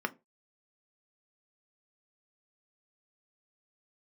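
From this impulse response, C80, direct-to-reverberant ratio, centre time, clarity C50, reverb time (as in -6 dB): 31.5 dB, 6.5 dB, 3 ms, 24.0 dB, 0.25 s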